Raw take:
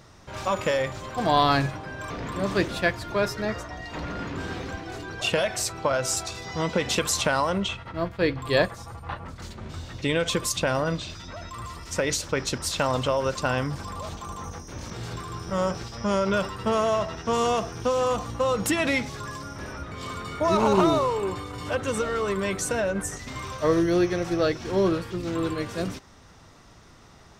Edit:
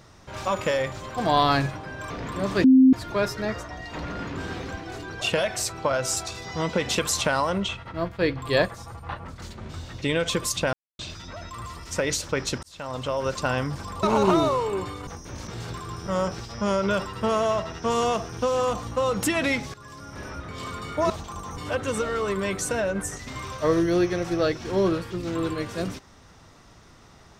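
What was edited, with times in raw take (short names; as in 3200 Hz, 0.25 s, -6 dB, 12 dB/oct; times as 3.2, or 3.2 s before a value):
2.64–2.93 bleep 261 Hz -10.5 dBFS
10.73–10.99 mute
12.63–13.33 fade in
14.03–14.5 swap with 20.53–21.57
19.17–19.71 fade in, from -14.5 dB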